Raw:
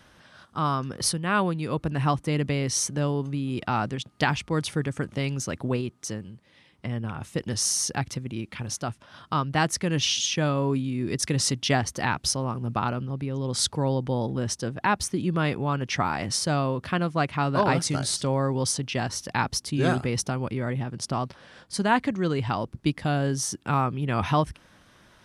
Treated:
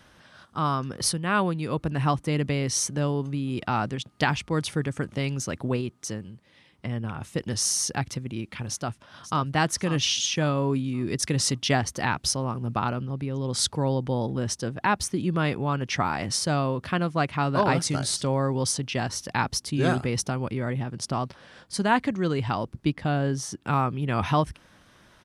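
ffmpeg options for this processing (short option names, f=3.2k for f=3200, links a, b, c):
-filter_complex "[0:a]asplit=2[a][b];[b]afade=t=in:st=8.69:d=0.01,afade=t=out:st=9.42:d=0.01,aecho=0:1:540|1080|1620|2160:0.251189|0.087916|0.0307706|0.0107697[c];[a][c]amix=inputs=2:normalize=0,asettb=1/sr,asplit=3[d][e][f];[d]atrim=end=22.854[g];[e]atrim=start=22.85:end=23.63,asetpts=PTS-STARTPTS,afade=t=in:d=0.004:c=qsin,afade=t=out:st=0.776:d=0.004:c=qsin,highshelf=f=5.2k:g=-9.5[h];[f]atrim=start=23.626[i];[g][h]acrossfade=d=0.004:c1=hsin:c2=qsin[j];[j][i]acrossfade=d=0.004:c1=qsin:c2=hsin"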